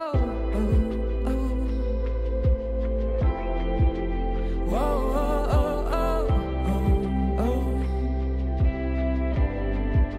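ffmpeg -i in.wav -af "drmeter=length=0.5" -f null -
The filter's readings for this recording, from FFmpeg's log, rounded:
Channel 1: DR: 7.1
Overall DR: 7.1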